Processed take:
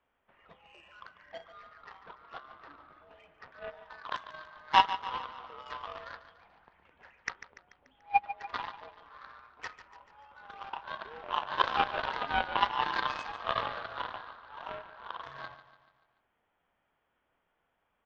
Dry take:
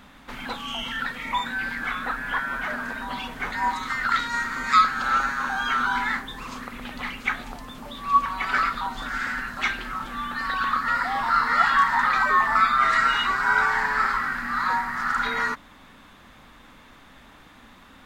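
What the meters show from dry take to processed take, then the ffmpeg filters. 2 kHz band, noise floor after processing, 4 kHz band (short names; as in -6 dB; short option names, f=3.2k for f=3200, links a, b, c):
-16.0 dB, -78 dBFS, -7.0 dB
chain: -filter_complex "[0:a]highpass=f=330:t=q:w=0.5412,highpass=f=330:t=q:w=1.307,lowpass=f=3.3k:t=q:w=0.5176,lowpass=f=3.3k:t=q:w=0.7071,lowpass=f=3.3k:t=q:w=1.932,afreqshift=-320,aeval=exprs='0.473*(cos(1*acos(clip(val(0)/0.473,-1,1)))-cos(1*PI/2))+0.15*(cos(3*acos(clip(val(0)/0.473,-1,1)))-cos(3*PI/2))':c=same,asplit=2[a][b];[b]aecho=0:1:145|290|435|580|725:0.224|0.116|0.0605|0.0315|0.0164[c];[a][c]amix=inputs=2:normalize=0"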